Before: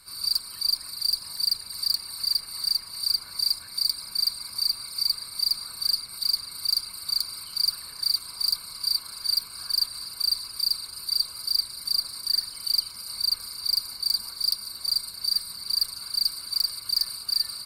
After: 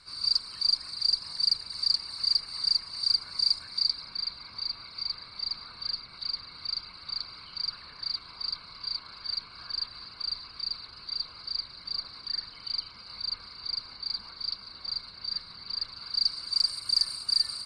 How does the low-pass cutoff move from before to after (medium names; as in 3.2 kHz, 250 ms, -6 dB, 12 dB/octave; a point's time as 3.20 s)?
low-pass 24 dB/octave
3.63 s 6.4 kHz
4.22 s 3.8 kHz
15.89 s 3.8 kHz
16.72 s 8.3 kHz